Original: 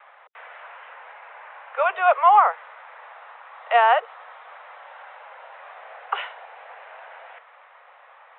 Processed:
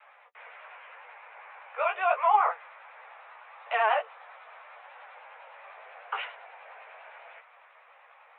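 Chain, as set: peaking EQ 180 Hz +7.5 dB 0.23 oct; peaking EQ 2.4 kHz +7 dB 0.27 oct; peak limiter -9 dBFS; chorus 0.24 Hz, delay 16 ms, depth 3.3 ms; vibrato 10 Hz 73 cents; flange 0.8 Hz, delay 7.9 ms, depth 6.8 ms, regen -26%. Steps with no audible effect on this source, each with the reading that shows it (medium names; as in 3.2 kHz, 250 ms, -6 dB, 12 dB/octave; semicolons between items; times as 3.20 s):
peaking EQ 180 Hz: input has nothing below 400 Hz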